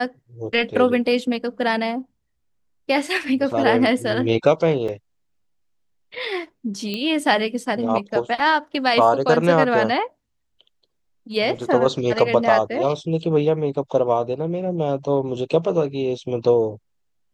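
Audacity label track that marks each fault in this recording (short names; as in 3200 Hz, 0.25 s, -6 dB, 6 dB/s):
4.880000	4.880000	gap 4.6 ms
6.940000	6.940000	pop -14 dBFS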